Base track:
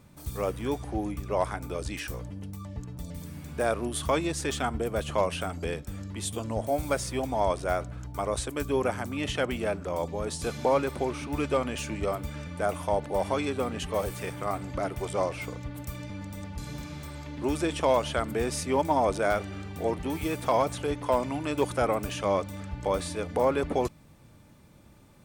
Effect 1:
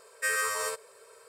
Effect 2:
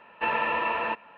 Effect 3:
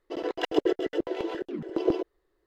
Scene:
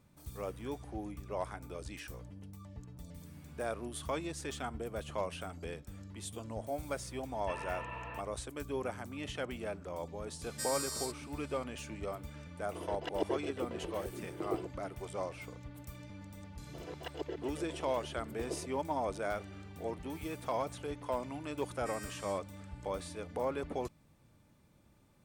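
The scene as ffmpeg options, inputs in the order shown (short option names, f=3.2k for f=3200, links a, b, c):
-filter_complex "[1:a]asplit=2[a][b];[3:a]asplit=2[c][d];[0:a]volume=-10.5dB[e];[a]highshelf=f=3.2k:t=q:w=3:g=10[f];[d]highpass=370[g];[b]bandpass=f=5.1k:t=q:w=0.6:csg=0[h];[2:a]atrim=end=1.17,asetpts=PTS-STARTPTS,volume=-17dB,afade=t=in:d=0.004:c=hsin,afade=t=out:st=1.166:d=0.004:c=hsin,adelay=7260[i];[f]atrim=end=1.28,asetpts=PTS-STARTPTS,volume=-16dB,afade=t=in:d=0.004:c=hsin,afade=t=out:st=1.276:d=0.004:c=hsin,adelay=10360[j];[c]atrim=end=2.46,asetpts=PTS-STARTPTS,volume=-11.5dB,afade=t=in:d=0.004:c=hsin,afade=t=out:st=2.456:d=0.004:c=hsin,adelay=12640[k];[g]atrim=end=2.46,asetpts=PTS-STARTPTS,volume=-14dB,afade=t=in:d=0.004:c=hsin,afade=t=out:st=2.456:d=0.004:c=hsin,adelay=16630[l];[h]atrim=end=1.28,asetpts=PTS-STARTPTS,volume=-15dB,afade=t=in:d=0.004:c=hsin,afade=t=out:st=1.276:d=0.004:c=hsin,adelay=21630[m];[e][i][j][k][l][m]amix=inputs=6:normalize=0"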